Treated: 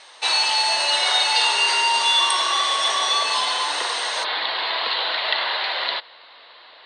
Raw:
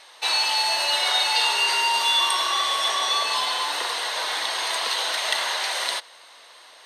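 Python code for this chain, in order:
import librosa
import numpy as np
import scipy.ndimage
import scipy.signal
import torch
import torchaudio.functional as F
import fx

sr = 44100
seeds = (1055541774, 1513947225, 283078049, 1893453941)

y = fx.steep_lowpass(x, sr, hz=fx.steps((0.0, 9800.0), (4.23, 4500.0)), slope=72)
y = F.gain(torch.from_numpy(y), 2.5).numpy()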